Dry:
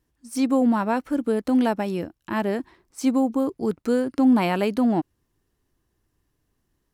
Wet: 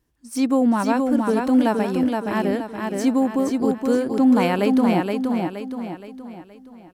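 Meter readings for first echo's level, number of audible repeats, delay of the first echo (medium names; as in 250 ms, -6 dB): -4.0 dB, 5, 471 ms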